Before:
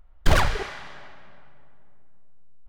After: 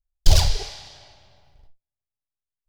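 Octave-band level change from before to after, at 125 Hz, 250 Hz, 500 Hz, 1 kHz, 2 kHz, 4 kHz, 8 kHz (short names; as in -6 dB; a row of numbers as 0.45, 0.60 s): +4.5, -5.5, -4.5, -7.0, -10.0, +6.5, +9.0 dB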